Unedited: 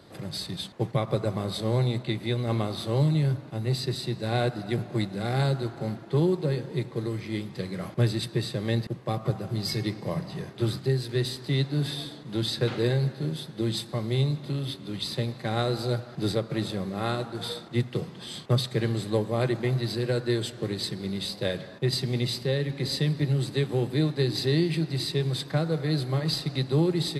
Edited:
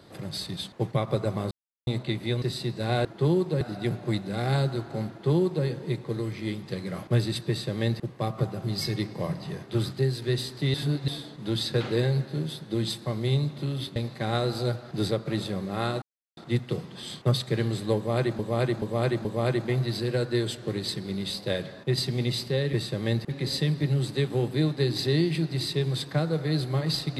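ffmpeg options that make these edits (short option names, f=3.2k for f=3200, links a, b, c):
-filter_complex "[0:a]asplit=16[a][b][c][d][e][f][g][h][i][j][k][l][m][n][o][p];[a]atrim=end=1.51,asetpts=PTS-STARTPTS,afade=t=out:st=1.506:d=0.004:c=hsin[q];[b]atrim=start=1.51:end=1.87,asetpts=PTS-STARTPTS,volume=0[r];[c]atrim=start=1.87:end=2.422,asetpts=PTS-STARTPTS,afade=t=in:d=0.004:c=hsin[s];[d]atrim=start=3.848:end=4.482[t];[e]atrim=start=5.968:end=6.532[u];[f]atrim=start=4.478:end=11.612[v];[g]atrim=start=11.608:end=11.952,asetpts=PTS-STARTPTS,areverse[w];[h]atrim=start=11.948:end=14.832[x];[i]atrim=start=15.198:end=17.26,asetpts=PTS-STARTPTS,afade=t=out:st=2.058:d=0.004:c=hsin[y];[j]atrim=start=17.26:end=17.61,asetpts=PTS-STARTPTS,volume=0[z];[k]atrim=start=17.61:end=19.632,asetpts=PTS-STARTPTS,afade=t=in:d=0.004:c=hsin[aa];[l]atrim=start=19.198:end=19.632[ab];[m]atrim=start=19.198:end=19.632[ac];[n]atrim=start=19.198:end=22.682[ad];[o]atrim=start=8.348:end=8.912[ae];[p]atrim=start=22.678[af];[q][r][s]concat=n=3:v=0:a=1[ag];[ag][t]acrossfade=d=0.004:c1=hsin:c2=hsin[ah];[ah][u]acrossfade=d=0.004:c1=hsin:c2=hsin[ai];[ai][v]acrossfade=d=0.004:c1=hsin:c2=hsin[aj];[aj][w]acrossfade=d=0.004:c1=hsin:c2=hsin[ak];[ak][x]acrossfade=d=0.004:c1=hsin:c2=hsin[al];[y][z][aa]concat=n=3:v=0:a=1[am];[al][am]acrossfade=d=0.004:c1=hsin:c2=hsin[an];[an][ab]acrossfade=d=0.004:c1=hsin:c2=hsin[ao];[ao][ac]acrossfade=d=0.004:c1=hsin:c2=hsin[ap];[ap][ad]acrossfade=d=0.004:c1=hsin:c2=hsin[aq];[aq][ae]acrossfade=d=0.004:c1=hsin:c2=hsin[ar];[ar][af]acrossfade=d=0.004:c1=hsin:c2=hsin"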